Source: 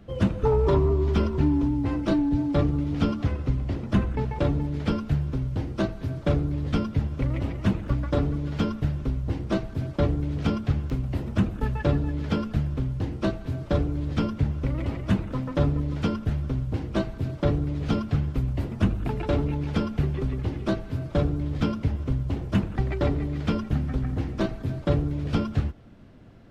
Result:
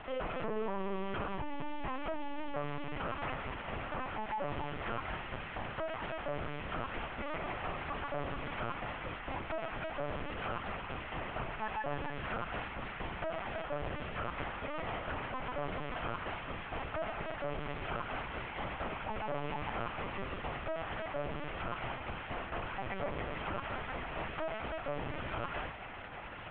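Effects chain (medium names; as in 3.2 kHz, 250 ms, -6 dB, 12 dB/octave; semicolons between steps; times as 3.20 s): one-bit delta coder 16 kbps, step -36 dBFS; high-pass 620 Hz 12 dB/octave; dynamic bell 930 Hz, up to +5 dB, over -49 dBFS, Q 1.1; peak limiter -32 dBFS, peak gain reduction 11 dB; LPC vocoder at 8 kHz pitch kept; trim +3 dB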